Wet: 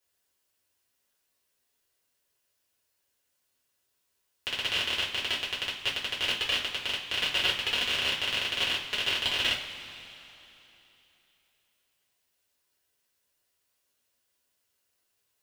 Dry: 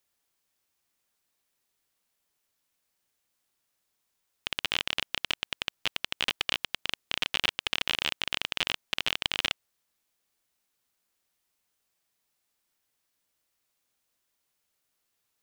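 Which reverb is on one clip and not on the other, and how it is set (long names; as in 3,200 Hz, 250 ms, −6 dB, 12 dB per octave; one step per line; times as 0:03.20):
coupled-rooms reverb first 0.29 s, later 3.2 s, from −18 dB, DRR −7 dB
level −6 dB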